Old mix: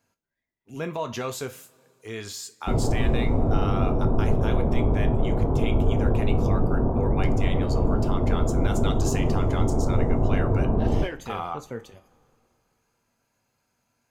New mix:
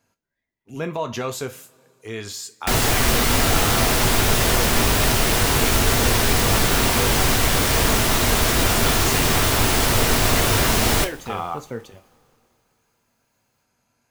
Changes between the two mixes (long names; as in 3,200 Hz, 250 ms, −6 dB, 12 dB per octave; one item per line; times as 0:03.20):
speech +3.5 dB
background: remove Gaussian smoothing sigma 12 samples